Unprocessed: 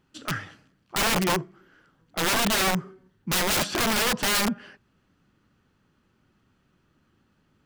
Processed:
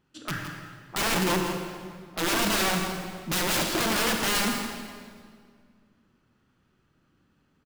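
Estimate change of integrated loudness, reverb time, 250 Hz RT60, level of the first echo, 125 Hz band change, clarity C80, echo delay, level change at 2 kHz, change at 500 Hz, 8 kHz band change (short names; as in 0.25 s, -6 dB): -2.0 dB, 2.0 s, 2.4 s, -9.5 dB, -1.0 dB, 4.0 dB, 0.165 s, -1.5 dB, -0.5 dB, -2.0 dB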